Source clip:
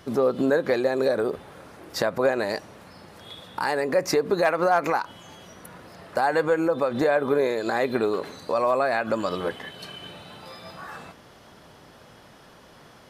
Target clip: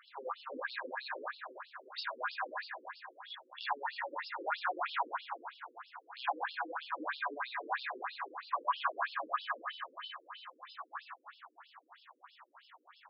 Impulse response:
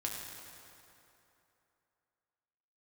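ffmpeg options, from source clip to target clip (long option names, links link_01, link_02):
-filter_complex "[0:a]lowshelf=frequency=680:width_type=q:width=3:gain=-12.5,asoftclip=type=hard:threshold=-19dB[link_01];[1:a]atrim=start_sample=2205[link_02];[link_01][link_02]afir=irnorm=-1:irlink=0,afftfilt=real='re*between(b*sr/1024,350*pow(3900/350,0.5+0.5*sin(2*PI*3.1*pts/sr))/1.41,350*pow(3900/350,0.5+0.5*sin(2*PI*3.1*pts/sr))*1.41)':imag='im*between(b*sr/1024,350*pow(3900/350,0.5+0.5*sin(2*PI*3.1*pts/sr))/1.41,350*pow(3900/350,0.5+0.5*sin(2*PI*3.1*pts/sr))*1.41)':win_size=1024:overlap=0.75,volume=-4.5dB"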